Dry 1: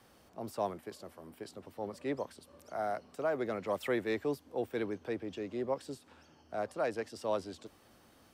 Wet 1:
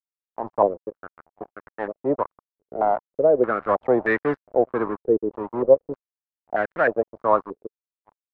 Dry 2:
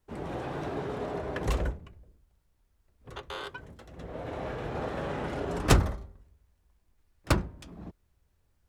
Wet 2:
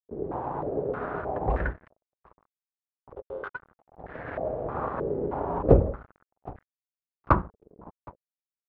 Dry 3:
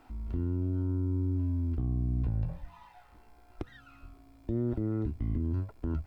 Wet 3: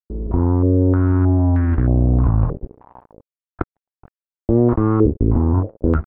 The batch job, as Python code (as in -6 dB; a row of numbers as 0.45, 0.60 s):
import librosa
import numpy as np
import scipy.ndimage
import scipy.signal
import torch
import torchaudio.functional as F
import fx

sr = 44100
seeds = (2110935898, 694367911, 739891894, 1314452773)

y = fx.rattle_buzz(x, sr, strikes_db=-20.0, level_db=-24.0)
y = fx.echo_feedback(y, sr, ms=766, feedback_pct=21, wet_db=-20)
y = np.sign(y) * np.maximum(np.abs(y) - 10.0 ** (-43.0 / 20.0), 0.0)
y = fx.filter_held_lowpass(y, sr, hz=3.2, low_hz=430.0, high_hz=1700.0)
y = y * 10.0 ** (-3 / 20.0) / np.max(np.abs(y))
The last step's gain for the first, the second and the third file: +12.0, +2.0, +16.0 dB